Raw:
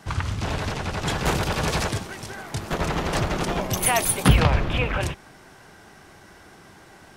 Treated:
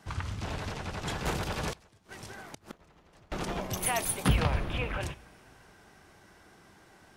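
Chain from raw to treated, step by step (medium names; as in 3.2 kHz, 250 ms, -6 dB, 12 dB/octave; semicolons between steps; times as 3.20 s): two-slope reverb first 0.39 s, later 3.7 s, from -16 dB, DRR 17 dB; 1.72–3.32 s: inverted gate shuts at -18 dBFS, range -26 dB; trim -9 dB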